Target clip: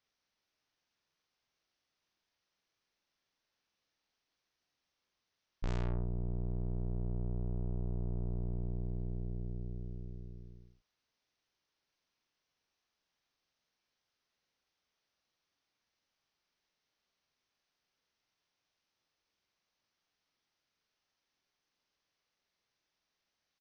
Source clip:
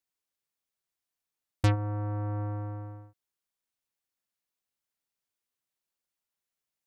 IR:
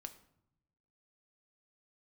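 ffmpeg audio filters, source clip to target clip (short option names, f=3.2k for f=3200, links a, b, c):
-filter_complex "[0:a]asetrate=12833,aresample=44100,aresample=16000,asoftclip=type=tanh:threshold=-32.5dB,aresample=44100,asplit=2[a][b];[b]adelay=46,volume=-5dB[c];[a][c]amix=inputs=2:normalize=0,volume=1.5dB"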